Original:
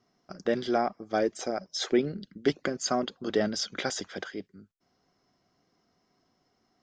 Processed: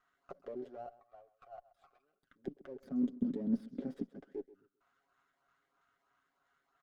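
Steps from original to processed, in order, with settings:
dynamic equaliser 6,600 Hz, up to −6 dB, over −45 dBFS, Q 0.94
output level in coarse steps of 20 dB
comb filter 7.3 ms, depth 69%
downward compressor 4 to 1, threshold −51 dBFS, peak gain reduction 21.5 dB
0:02.82–0:04.13: graphic EQ with 10 bands 125 Hz +4 dB, 250 Hz +11 dB, 500 Hz +9 dB, 2,000 Hz +5 dB, 4,000 Hz +7 dB, 8,000 Hz +10 dB
auto-filter notch saw up 3.1 Hz 280–3,400 Hz
0:00.86–0:02.23: formant filter a
envelope filter 210–1,500 Hz, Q 3.7, down, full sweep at −44.5 dBFS
on a send: feedback echo with a high-pass in the loop 131 ms, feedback 24%, high-pass 180 Hz, level −17.5 dB
on the sum: windowed peak hold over 5 samples
level +14.5 dB

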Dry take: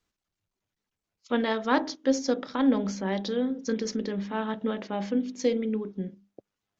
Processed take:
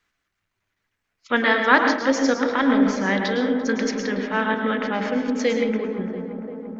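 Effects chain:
parametric band 1,800 Hz +13.5 dB 1.6 octaves
feedback echo with a low-pass in the loop 343 ms, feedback 83%, low-pass 1,500 Hz, level −11.5 dB
on a send at −4.5 dB: convolution reverb RT60 0.65 s, pre-delay 106 ms
on the sum: level +1.5 dB

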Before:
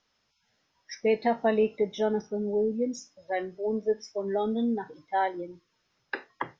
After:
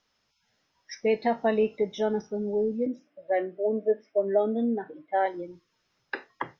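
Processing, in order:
0:02.86–0:05.26: loudspeaker in its box 170–2,800 Hz, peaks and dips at 310 Hz +8 dB, 610 Hz +10 dB, 950 Hz −8 dB

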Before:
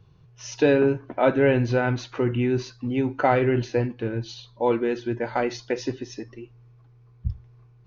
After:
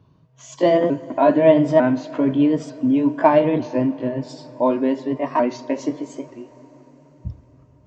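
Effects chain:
pitch shifter swept by a sawtooth +4 semitones, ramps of 899 ms
high-pass filter 56 Hz
hollow resonant body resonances 270/620/950 Hz, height 15 dB, ringing for 40 ms
convolution reverb RT60 5.0 s, pre-delay 78 ms, DRR 18 dB
level −2.5 dB

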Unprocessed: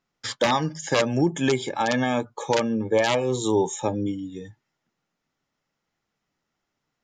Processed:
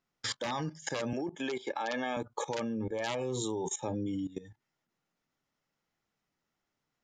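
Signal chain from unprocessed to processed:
0:01.13–0:02.17: three-way crossover with the lows and the highs turned down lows −22 dB, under 260 Hz, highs −17 dB, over 6,400 Hz
output level in coarse steps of 17 dB

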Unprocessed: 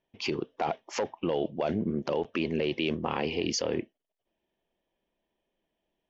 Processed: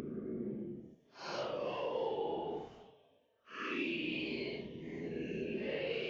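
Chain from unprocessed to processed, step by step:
extreme stretch with random phases 8.4×, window 0.05 s, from 0:01.92
low-shelf EQ 470 Hz −8 dB
level −6 dB

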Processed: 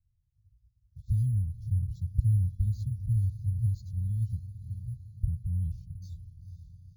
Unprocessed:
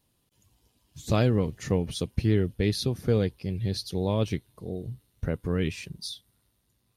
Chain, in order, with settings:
inverse Chebyshev band-stop filter 510–1,800 Hz, stop band 80 dB
high-frequency loss of the air 210 metres
feedback delay with all-pass diffusion 499 ms, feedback 57%, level −12.5 dB
bad sample-rate conversion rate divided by 4×, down filtered, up hold
flanger whose copies keep moving one way rising 0.64 Hz
level +6.5 dB

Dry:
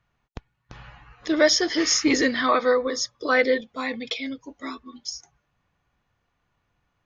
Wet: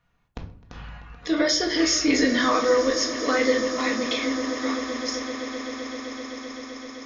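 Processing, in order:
brickwall limiter −15 dBFS, peak gain reduction 8.5 dB
echo that builds up and dies away 129 ms, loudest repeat 8, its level −17.5 dB
rectangular room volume 510 cubic metres, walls furnished, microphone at 1.8 metres

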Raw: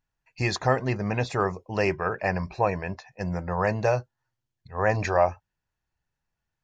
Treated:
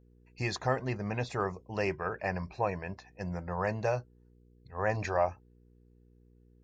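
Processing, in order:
hum with harmonics 60 Hz, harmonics 8, −54 dBFS −5 dB per octave
level −7 dB

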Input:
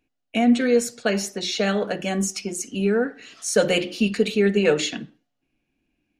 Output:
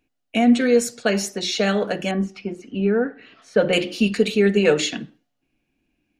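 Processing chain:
0:02.11–0:03.73: high-frequency loss of the air 380 metres
level +2 dB

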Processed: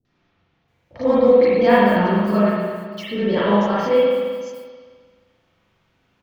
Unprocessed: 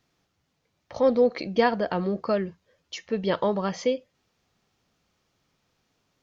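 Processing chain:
noise that follows the level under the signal 31 dB
three-band delay without the direct sound lows, mids, highs 50/680 ms, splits 510/6,000 Hz
spring reverb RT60 1.7 s, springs 34/44 ms, chirp 75 ms, DRR −9 dB

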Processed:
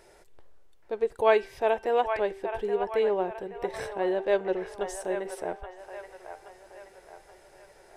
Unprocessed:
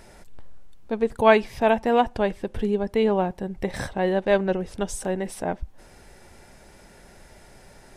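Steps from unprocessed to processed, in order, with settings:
low shelf with overshoot 300 Hz −6.5 dB, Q 3
hum removal 389.4 Hz, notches 34
on a send: delay with a band-pass on its return 825 ms, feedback 46%, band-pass 1,300 Hz, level −6 dB
on the sum: level −7 dB

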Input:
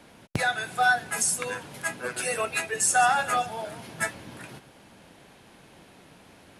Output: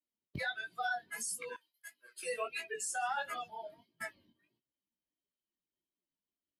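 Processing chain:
spectral dynamics exaggerated over time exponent 2
noise gate −55 dBFS, range −14 dB
brickwall limiter −24 dBFS, peak gain reduction 10.5 dB
chorus effect 1.5 Hz, delay 16.5 ms, depth 5.7 ms
0:01.56–0:02.23: first difference
level −1.5 dB

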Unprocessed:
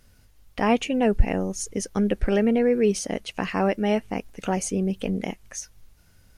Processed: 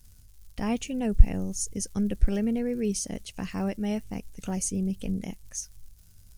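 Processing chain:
low-shelf EQ 170 Hz +9.5 dB
surface crackle 170 per second −43 dBFS
bass and treble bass +8 dB, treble +15 dB
level −13 dB

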